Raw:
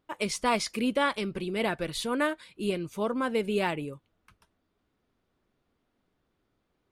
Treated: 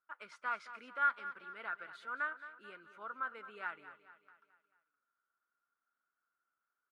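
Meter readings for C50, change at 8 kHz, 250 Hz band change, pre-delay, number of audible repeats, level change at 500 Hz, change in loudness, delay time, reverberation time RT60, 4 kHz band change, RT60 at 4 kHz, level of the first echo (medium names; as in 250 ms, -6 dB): no reverb, under -30 dB, -31.5 dB, no reverb, 4, -24.5 dB, -10.5 dB, 219 ms, no reverb, -23.5 dB, no reverb, -13.5 dB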